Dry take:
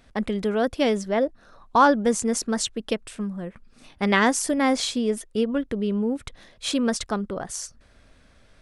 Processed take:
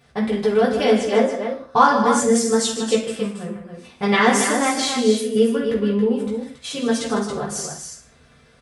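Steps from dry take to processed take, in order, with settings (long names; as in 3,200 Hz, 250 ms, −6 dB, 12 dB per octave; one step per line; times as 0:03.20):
high-pass filter 57 Hz
0:06.21–0:07.05: output level in coarse steps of 11 dB
loudspeakers that aren't time-aligned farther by 52 metres −10 dB, 95 metres −7 dB
convolution reverb RT60 0.45 s, pre-delay 3 ms, DRR −6 dB
level −3 dB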